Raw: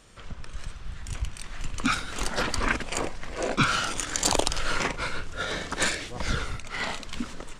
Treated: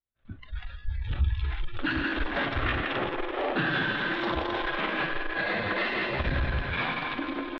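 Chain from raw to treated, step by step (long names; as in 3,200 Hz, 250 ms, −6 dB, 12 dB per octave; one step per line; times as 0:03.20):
wavefolder on the positive side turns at −15.5 dBFS
high-shelf EQ 2,600 Hz −7 dB
feedback delay network reverb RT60 3.1 s, high-frequency decay 0.6×, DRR 5.5 dB
downward expander −31 dBFS
echo with a time of its own for lows and highs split 300 Hz, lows 106 ms, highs 166 ms, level −6 dB
pitch shifter +2.5 semitones
downward compressor 3 to 1, threshold −29 dBFS, peak gain reduction 9 dB
soft clipping −29.5 dBFS, distortion −13 dB
elliptic low-pass filter 3,700 Hz, stop band 70 dB
parametric band 68 Hz +7 dB 0.82 octaves
hum removal 60.05 Hz, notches 16
noise reduction from a noise print of the clip's start 19 dB
level +8.5 dB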